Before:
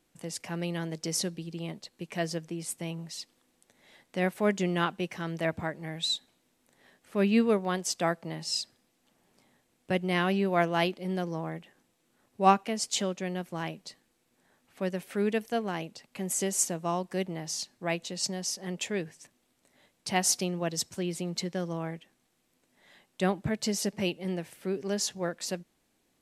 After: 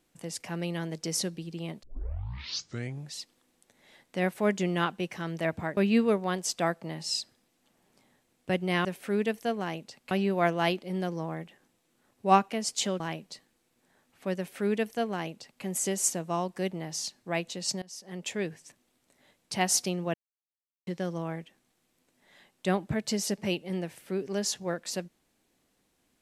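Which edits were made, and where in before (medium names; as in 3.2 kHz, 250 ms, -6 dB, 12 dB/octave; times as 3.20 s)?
1.83 s: tape start 1.35 s
5.77–7.18 s: delete
13.15–13.55 s: delete
14.92–16.18 s: copy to 10.26 s
18.37–18.93 s: fade in, from -21.5 dB
20.69–21.42 s: mute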